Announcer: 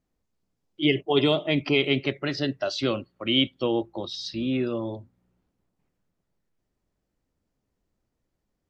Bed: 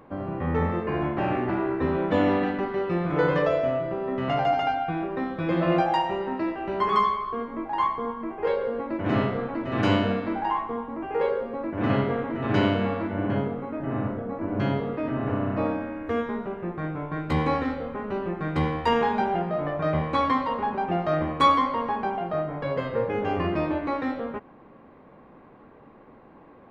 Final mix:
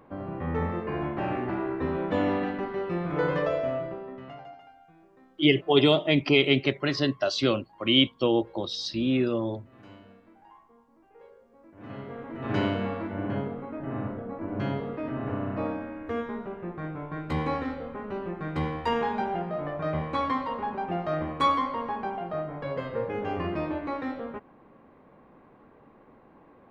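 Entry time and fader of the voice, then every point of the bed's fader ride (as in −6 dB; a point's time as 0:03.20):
4.60 s, +1.5 dB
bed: 0:03.83 −4 dB
0:04.68 −28 dB
0:11.45 −28 dB
0:12.51 −4.5 dB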